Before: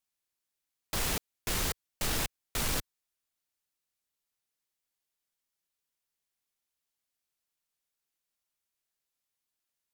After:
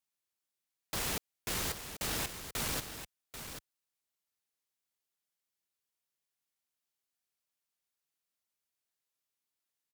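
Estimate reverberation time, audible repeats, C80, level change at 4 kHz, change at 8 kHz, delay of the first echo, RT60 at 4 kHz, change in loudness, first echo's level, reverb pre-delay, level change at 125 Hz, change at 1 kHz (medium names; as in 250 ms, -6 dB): no reverb, 1, no reverb, -2.5 dB, -2.5 dB, 788 ms, no reverb, -4.0 dB, -10.0 dB, no reverb, -4.5 dB, -2.5 dB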